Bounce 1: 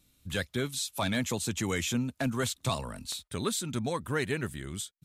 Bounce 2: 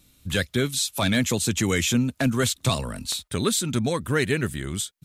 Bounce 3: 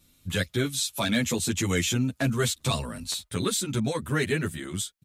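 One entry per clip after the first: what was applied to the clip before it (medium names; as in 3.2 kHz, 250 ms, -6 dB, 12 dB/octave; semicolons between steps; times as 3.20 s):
dynamic bell 890 Hz, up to -6 dB, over -47 dBFS, Q 1.5; trim +8.5 dB
endless flanger 9.5 ms +0.69 Hz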